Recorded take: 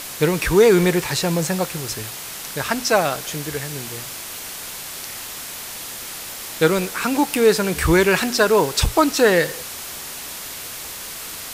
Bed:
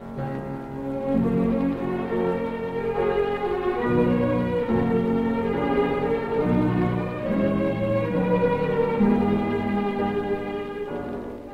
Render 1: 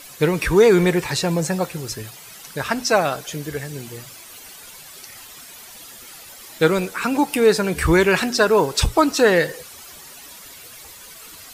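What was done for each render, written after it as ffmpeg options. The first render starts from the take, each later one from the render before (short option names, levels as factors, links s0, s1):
-af "afftdn=nr=12:nf=-33"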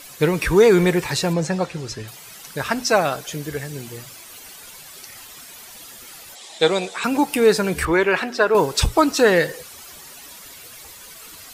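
-filter_complex "[0:a]asettb=1/sr,asplit=3[s0][s1][s2];[s0]atrim=end=1.334[s3];[s1]atrim=start=1.33:end=2.08,asetpts=PTS-STARTPTS,afade=t=in:d=0.004:c=qsin,afade=t=out:st=0.746:d=0.004:c=qsin,lowpass=6200[s4];[s2]atrim=start=2.076[s5];[s3][s4]acrossfade=d=0.004:c1=hsin:c2=qsin[s6];[s6][s5]acrossfade=d=0.004:c1=qsin:c2=hsin,asettb=1/sr,asplit=3[s7][s8][s9];[s7]atrim=end=6.354[s10];[s8]atrim=start=6.35:end=7.04,asetpts=PTS-STARTPTS,afade=t=in:d=0.004:c=qsin,afade=t=out:st=0.686:d=0.004:c=qsin,highpass=240,equalizer=f=280:t=q:w=4:g=-9,equalizer=f=730:t=q:w=4:g=8,equalizer=f=1400:t=q:w=4:g=-7,equalizer=f=3600:t=q:w=4:g=9,equalizer=f=7700:t=q:w=4:g=4,lowpass=f=8800:w=0.5412,lowpass=f=8800:w=1.3066[s11];[s9]atrim=start=7.036[s12];[s10][s11]acrossfade=d=0.004:c1=hsin:c2=qsin[s13];[s13][s12]acrossfade=d=0.004:c1=qsin:c2=hsin,asettb=1/sr,asplit=3[s14][s15][s16];[s14]atrim=end=7.854[s17];[s15]atrim=start=7.85:end=8.55,asetpts=PTS-STARTPTS,afade=t=in:d=0.004:c=qsin,afade=t=out:st=0.696:d=0.004:c=qsin,bass=f=250:g=-12,treble=f=4000:g=-14[s18];[s16]atrim=start=8.546[s19];[s17][s18]acrossfade=d=0.004:c1=hsin:c2=qsin[s20];[s20][s19]acrossfade=d=0.004:c1=qsin:c2=hsin"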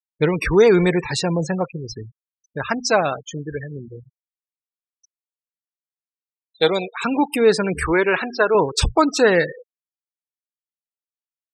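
-af "afftfilt=real='re*gte(hypot(re,im),0.0562)':imag='im*gte(hypot(re,im),0.0562)':win_size=1024:overlap=0.75"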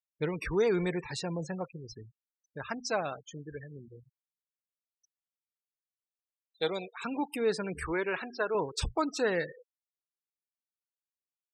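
-af "volume=0.2"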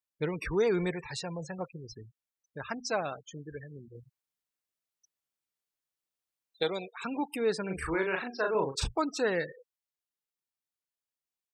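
-filter_complex "[0:a]asettb=1/sr,asplit=3[s0][s1][s2];[s0]atrim=end=0.914[s3];[s1]atrim=start=0.91:end=1.59,asetpts=PTS-STARTPTS,afade=t=in:d=0.004:c=qsin,afade=t=out:st=0.676:d=0.004:c=qsin,equalizer=f=270:t=o:w=0.89:g=-10.5[s4];[s2]atrim=start=1.586[s5];[s3][s4]acrossfade=d=0.004:c1=hsin:c2=qsin[s6];[s6][s5]acrossfade=d=0.004:c1=qsin:c2=hsin,asplit=3[s7][s8][s9];[s7]afade=t=out:st=7.68:d=0.02[s10];[s8]asplit=2[s11][s12];[s12]adelay=37,volume=0.631[s13];[s11][s13]amix=inputs=2:normalize=0,afade=t=in:st=7.68:d=0.02,afade=t=out:st=8.86:d=0.02[s14];[s9]afade=t=in:st=8.86:d=0.02[s15];[s10][s14][s15]amix=inputs=3:normalize=0,asplit=3[s16][s17][s18];[s16]atrim=end=3.952[s19];[s17]atrim=start=3.948:end=6.632,asetpts=PTS-STARTPTS,volume=1.58[s20];[s18]atrim=start=6.628[s21];[s19][s20]acrossfade=d=0.004:c1=hsin:c2=hsin[s22];[s22][s21]acrossfade=d=0.004:c1=hsin:c2=hsin"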